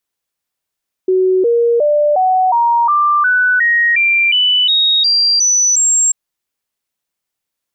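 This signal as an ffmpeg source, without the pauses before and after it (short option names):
-f lavfi -i "aevalsrc='0.355*clip(min(mod(t,0.36),0.36-mod(t,0.36))/0.005,0,1)*sin(2*PI*373*pow(2,floor(t/0.36)/3)*mod(t,0.36))':d=5.04:s=44100"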